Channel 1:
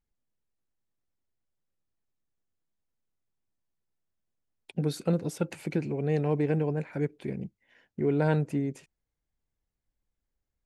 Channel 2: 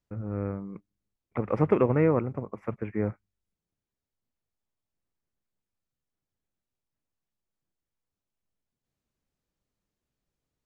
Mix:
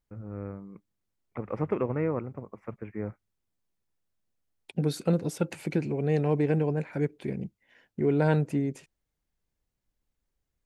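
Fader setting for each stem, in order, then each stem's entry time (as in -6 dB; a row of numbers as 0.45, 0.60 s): +1.5, -6.0 dB; 0.00, 0.00 s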